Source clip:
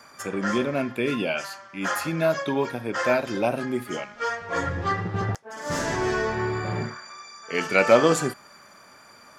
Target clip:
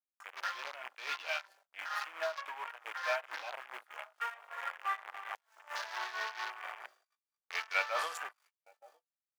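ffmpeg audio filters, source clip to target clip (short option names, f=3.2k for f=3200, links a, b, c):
-filter_complex "[0:a]aeval=exprs='val(0)+0.00794*(sin(2*PI*50*n/s)+sin(2*PI*2*50*n/s)/2+sin(2*PI*3*50*n/s)/3+sin(2*PI*4*50*n/s)/4+sin(2*PI*5*50*n/s)/5)':c=same,asettb=1/sr,asplit=3[a][b][c];[a]atrim=end=1.084[d];[b]atrim=start=1.08:end=3.49,asetpts=PTS-STARTPTS,afade=t=in:d=0.004:c=qsin,afade=t=out:st=2.406:d=0.004:c=qsin,aecho=1:1:6.4:0.63,atrim=end_sample=106281[e];[c]atrim=start=3.486[f];[d][e]acrossfade=d=0.004:c1=hsin:c2=qsin[g];[g][f]acrossfade=d=0.004:c1=qsin:c2=hsin,acrusher=bits=5:dc=4:mix=0:aa=0.000001,aecho=1:1:907|1814|2721|3628:0.075|0.0412|0.0227|0.0125,afwtdn=0.0178,tremolo=f=4.5:d=0.69,asoftclip=type=tanh:threshold=-9dB,highpass=f=800:w=0.5412,highpass=f=800:w=1.3066,agate=range=-32dB:threshold=-58dB:ratio=16:detection=peak,adynamicequalizer=threshold=0.00631:dfrequency=4200:dqfactor=0.7:tfrequency=4200:tqfactor=0.7:attack=5:release=100:ratio=0.375:range=2.5:mode=cutabove:tftype=highshelf,volume=-7dB"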